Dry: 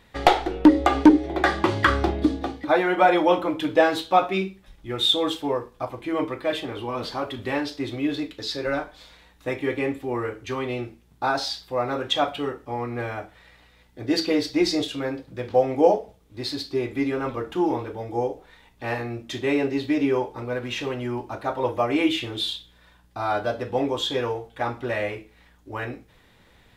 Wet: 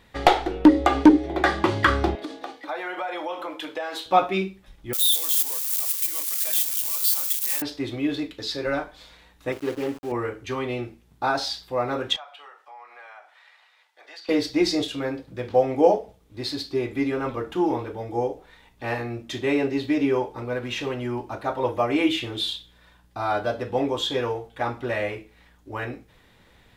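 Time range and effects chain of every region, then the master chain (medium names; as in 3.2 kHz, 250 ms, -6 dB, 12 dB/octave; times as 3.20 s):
2.15–4.06 s: high-pass 550 Hz + compression 4:1, threshold -28 dBFS
4.93–7.62 s: zero-crossing glitches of -17.5 dBFS + differentiator + waveshaping leveller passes 1
9.52–10.12 s: median filter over 25 samples + bass shelf 120 Hz -11 dB + small samples zeroed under -40.5 dBFS
12.16–14.29 s: high-pass 740 Hz 24 dB/octave + treble shelf 8.4 kHz -12 dB + compression 2.5:1, threshold -46 dBFS
whole clip: none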